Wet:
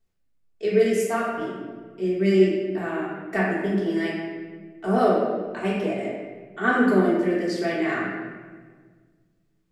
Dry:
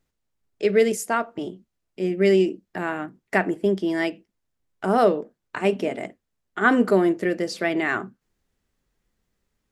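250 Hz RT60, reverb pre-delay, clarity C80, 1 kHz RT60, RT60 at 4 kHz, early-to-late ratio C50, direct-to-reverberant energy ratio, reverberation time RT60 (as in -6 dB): 2.0 s, 3 ms, 2.0 dB, 1.4 s, 1.0 s, 0.0 dB, -7.5 dB, 1.5 s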